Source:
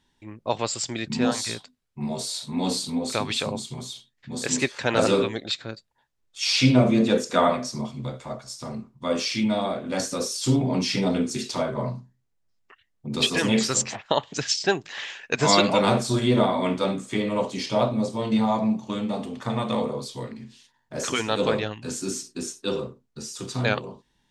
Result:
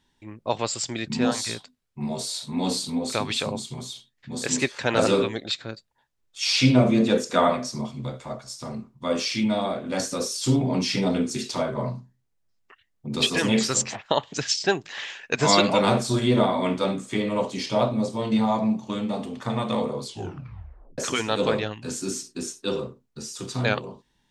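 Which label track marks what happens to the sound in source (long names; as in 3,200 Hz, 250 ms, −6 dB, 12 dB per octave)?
20.040000	20.040000	tape stop 0.94 s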